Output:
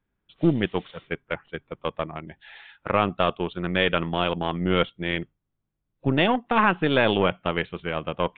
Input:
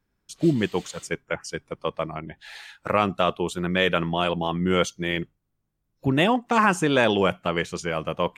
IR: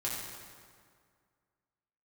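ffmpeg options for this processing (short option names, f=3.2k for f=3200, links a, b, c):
-af "aeval=exprs='0.501*(cos(1*acos(clip(val(0)/0.501,-1,1)))-cos(1*PI/2))+0.0178*(cos(6*acos(clip(val(0)/0.501,-1,1)))-cos(6*PI/2))+0.0224*(cos(7*acos(clip(val(0)/0.501,-1,1)))-cos(7*PI/2))':c=same,aresample=8000,aresample=44100"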